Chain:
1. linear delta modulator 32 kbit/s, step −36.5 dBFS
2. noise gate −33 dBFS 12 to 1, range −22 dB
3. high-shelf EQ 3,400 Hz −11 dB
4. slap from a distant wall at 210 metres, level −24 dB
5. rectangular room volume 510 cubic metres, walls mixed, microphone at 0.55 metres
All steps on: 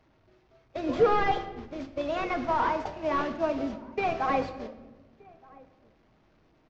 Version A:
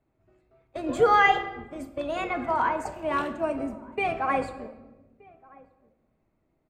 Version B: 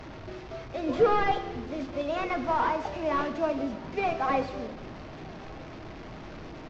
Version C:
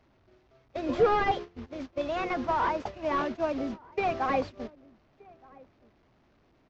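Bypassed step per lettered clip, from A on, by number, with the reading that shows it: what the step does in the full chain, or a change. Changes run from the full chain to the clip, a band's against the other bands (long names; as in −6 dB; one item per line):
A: 1, 2 kHz band +7.0 dB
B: 2, change in momentary loudness spread +3 LU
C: 5, echo-to-direct ratio −7.5 dB to −28.0 dB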